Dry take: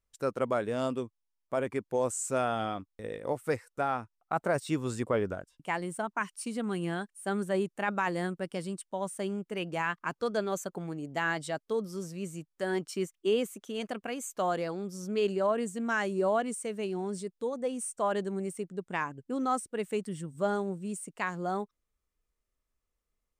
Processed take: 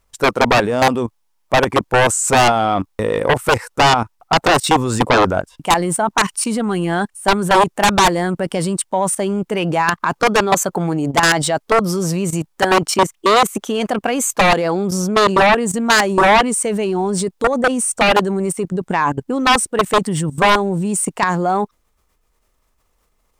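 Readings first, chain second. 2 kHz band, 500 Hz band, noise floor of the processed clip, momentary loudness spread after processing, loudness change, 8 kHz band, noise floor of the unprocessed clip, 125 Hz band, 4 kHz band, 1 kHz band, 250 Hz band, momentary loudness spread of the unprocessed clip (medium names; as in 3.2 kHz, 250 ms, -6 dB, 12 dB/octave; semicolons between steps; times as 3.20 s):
+18.5 dB, +14.0 dB, -64 dBFS, 7 LU, +17.0 dB, +20.5 dB, -83 dBFS, +17.0 dB, +23.5 dB, +19.5 dB, +15.0 dB, 7 LU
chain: level held to a coarse grid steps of 15 dB; sine folder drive 14 dB, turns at -18.5 dBFS; peaking EQ 880 Hz +6.5 dB 0.82 oct; trim +8.5 dB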